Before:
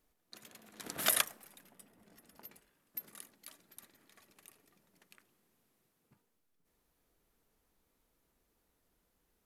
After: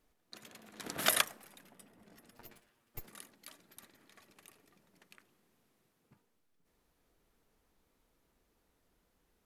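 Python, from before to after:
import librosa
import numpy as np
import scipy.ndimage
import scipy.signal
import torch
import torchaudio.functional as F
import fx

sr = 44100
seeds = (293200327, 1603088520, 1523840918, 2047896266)

y = fx.lower_of_two(x, sr, delay_ms=8.5, at=(2.31, 3.08))
y = fx.high_shelf(y, sr, hz=8800.0, db=-8.0)
y = y * 10.0 ** (3.0 / 20.0)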